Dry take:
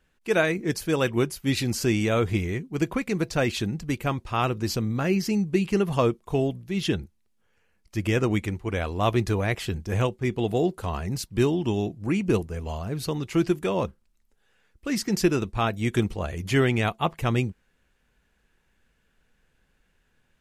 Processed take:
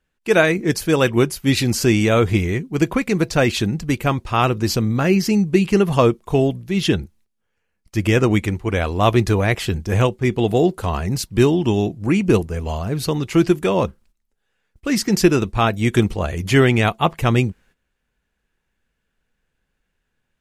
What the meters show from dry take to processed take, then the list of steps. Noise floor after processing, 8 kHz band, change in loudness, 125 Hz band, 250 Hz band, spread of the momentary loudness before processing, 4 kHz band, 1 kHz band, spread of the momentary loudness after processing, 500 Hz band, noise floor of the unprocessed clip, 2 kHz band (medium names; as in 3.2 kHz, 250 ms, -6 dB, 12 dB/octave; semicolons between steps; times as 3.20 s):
-74 dBFS, +7.5 dB, +7.5 dB, +7.5 dB, +7.5 dB, 6 LU, +7.5 dB, +7.5 dB, 6 LU, +7.5 dB, -69 dBFS, +7.5 dB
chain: gate -57 dBFS, range -13 dB; trim +7.5 dB